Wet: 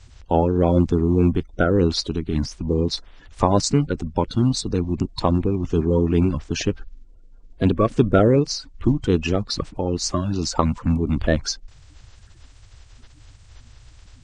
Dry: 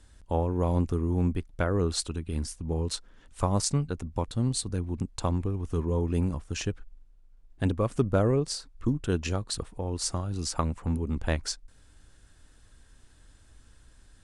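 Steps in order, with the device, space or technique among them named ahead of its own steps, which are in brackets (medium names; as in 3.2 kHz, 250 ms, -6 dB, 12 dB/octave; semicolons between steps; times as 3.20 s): clip after many re-uploads (low-pass 6.3 kHz 24 dB/octave; coarse spectral quantiser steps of 30 dB); trim +9 dB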